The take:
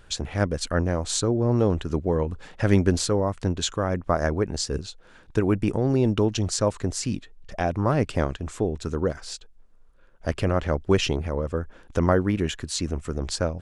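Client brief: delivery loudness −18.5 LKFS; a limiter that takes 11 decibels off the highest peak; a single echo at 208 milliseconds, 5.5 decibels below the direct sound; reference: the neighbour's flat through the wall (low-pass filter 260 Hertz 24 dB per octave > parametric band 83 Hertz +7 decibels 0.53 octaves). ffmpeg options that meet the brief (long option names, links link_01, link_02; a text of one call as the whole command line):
ffmpeg -i in.wav -af "alimiter=limit=-15.5dB:level=0:latency=1,lowpass=frequency=260:width=0.5412,lowpass=frequency=260:width=1.3066,equalizer=frequency=83:width_type=o:width=0.53:gain=7,aecho=1:1:208:0.531,volume=9.5dB" out.wav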